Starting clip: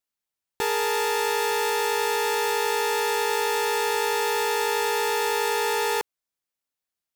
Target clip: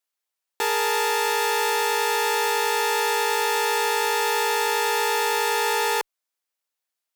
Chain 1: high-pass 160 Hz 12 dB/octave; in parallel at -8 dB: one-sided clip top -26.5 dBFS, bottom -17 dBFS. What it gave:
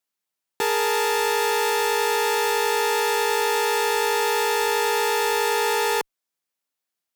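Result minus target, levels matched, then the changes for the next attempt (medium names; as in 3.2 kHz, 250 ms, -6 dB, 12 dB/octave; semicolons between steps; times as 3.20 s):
125 Hz band +6.5 dB
change: high-pass 440 Hz 12 dB/octave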